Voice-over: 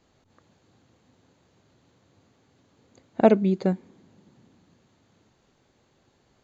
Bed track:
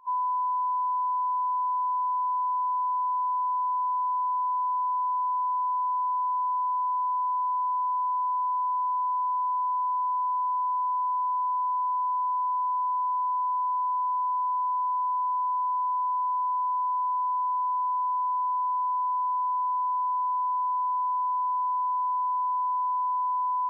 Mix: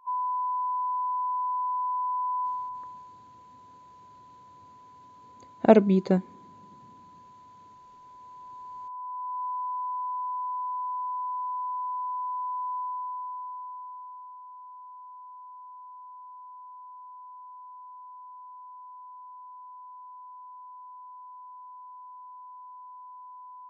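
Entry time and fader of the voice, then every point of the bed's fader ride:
2.45 s, +0.5 dB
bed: 0:02.45 −2 dB
0:03.20 −25.5 dB
0:07.96 −25.5 dB
0:09.44 −5 dB
0:12.77 −5 dB
0:14.41 −19 dB

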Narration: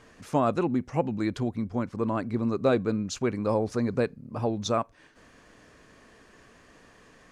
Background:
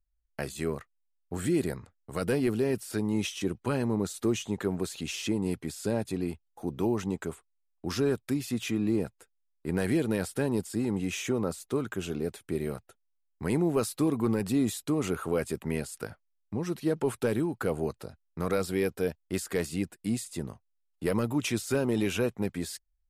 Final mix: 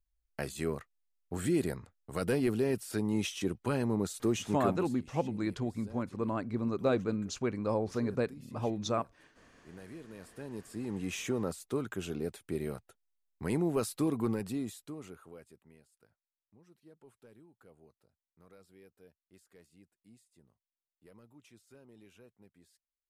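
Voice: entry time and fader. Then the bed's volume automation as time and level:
4.20 s, −5.5 dB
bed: 0:04.72 −2.5 dB
0:04.99 −21 dB
0:10.10 −21 dB
0:11.13 −4 dB
0:14.25 −4 dB
0:15.79 −30 dB

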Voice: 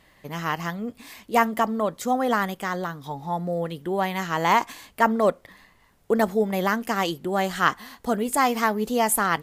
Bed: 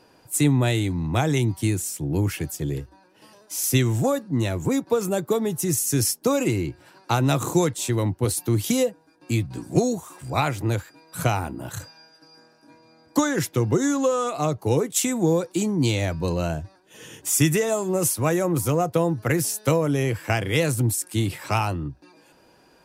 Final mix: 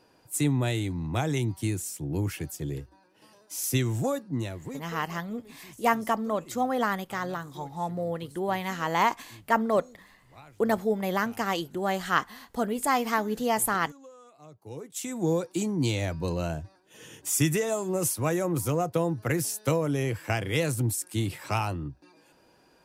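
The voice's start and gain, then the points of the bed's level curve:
4.50 s, −4.0 dB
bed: 0:04.33 −6 dB
0:05.19 −28 dB
0:14.41 −28 dB
0:15.30 −5 dB

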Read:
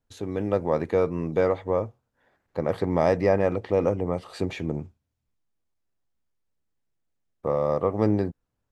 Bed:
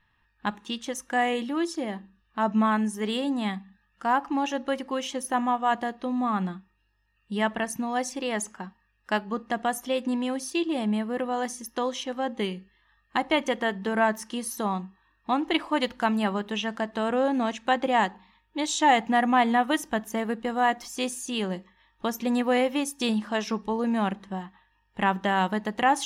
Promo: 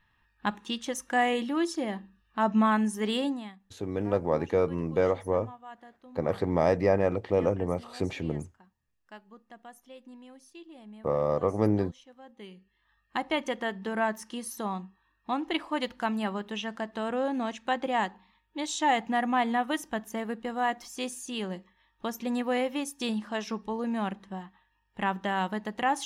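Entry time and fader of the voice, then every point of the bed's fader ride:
3.60 s, −2.5 dB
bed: 0:03.26 −0.5 dB
0:03.58 −21.5 dB
0:12.28 −21.5 dB
0:12.90 −5 dB

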